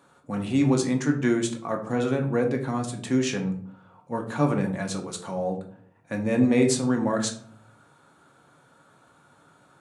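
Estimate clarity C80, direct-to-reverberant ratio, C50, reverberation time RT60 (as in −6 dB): 14.5 dB, 2.5 dB, 10.0 dB, 0.55 s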